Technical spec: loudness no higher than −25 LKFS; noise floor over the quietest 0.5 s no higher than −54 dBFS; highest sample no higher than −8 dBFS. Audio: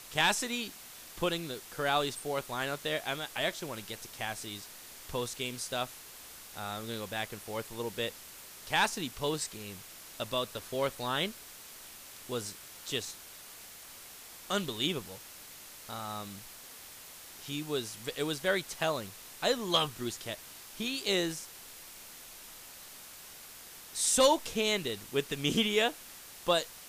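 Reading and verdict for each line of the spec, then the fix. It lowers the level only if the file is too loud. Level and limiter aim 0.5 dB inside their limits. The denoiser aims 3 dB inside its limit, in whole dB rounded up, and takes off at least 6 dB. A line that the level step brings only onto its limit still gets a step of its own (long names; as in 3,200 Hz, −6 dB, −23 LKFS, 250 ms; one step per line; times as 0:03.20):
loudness −33.0 LKFS: in spec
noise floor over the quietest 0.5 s −50 dBFS: out of spec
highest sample −14.5 dBFS: in spec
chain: broadband denoise 7 dB, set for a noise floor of −50 dBFS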